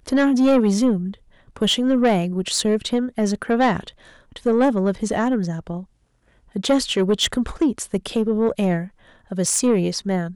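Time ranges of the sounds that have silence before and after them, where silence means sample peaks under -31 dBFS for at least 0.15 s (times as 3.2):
1.56–3.89
4.36–5.83
6.56–8.87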